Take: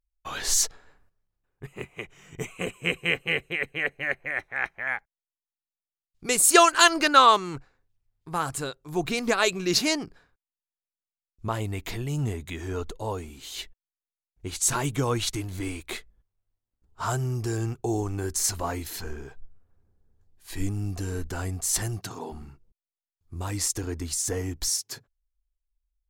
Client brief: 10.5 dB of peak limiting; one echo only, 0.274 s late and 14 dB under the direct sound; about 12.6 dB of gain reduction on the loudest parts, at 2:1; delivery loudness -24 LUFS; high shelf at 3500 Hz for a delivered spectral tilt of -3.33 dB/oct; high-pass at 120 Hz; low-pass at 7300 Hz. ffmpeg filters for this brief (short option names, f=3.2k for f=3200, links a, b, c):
-af "highpass=120,lowpass=7.3k,highshelf=f=3.5k:g=3.5,acompressor=threshold=-35dB:ratio=2,alimiter=level_in=0.5dB:limit=-24dB:level=0:latency=1,volume=-0.5dB,aecho=1:1:274:0.2,volume=12.5dB"